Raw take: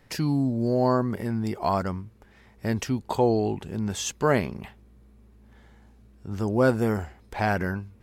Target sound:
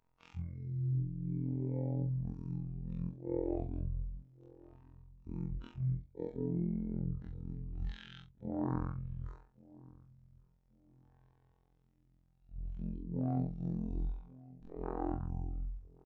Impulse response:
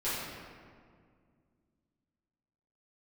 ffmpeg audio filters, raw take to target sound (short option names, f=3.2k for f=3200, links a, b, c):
-filter_complex "[0:a]afwtdn=0.0398,highshelf=f=7.1k:g=-7.5,areverse,acompressor=threshold=-37dB:ratio=4,areverse,afftfilt=real='hypot(re,im)*cos(PI*b)':imag='0':win_size=2048:overlap=0.75,asplit=2[a][b];[b]adelay=20,volume=-8dB[c];[a][c]amix=inputs=2:normalize=0,asplit=2[d][e];[e]adelay=565,lowpass=f=860:p=1,volume=-20dB,asplit=2[f][g];[g]adelay=565,lowpass=f=860:p=1,volume=0.34,asplit=2[h][i];[i]adelay=565,lowpass=f=860:p=1,volume=0.34[j];[f][h][j]amix=inputs=3:normalize=0[k];[d][k]amix=inputs=2:normalize=0,asetrate=22050,aresample=44100,volume=4dB"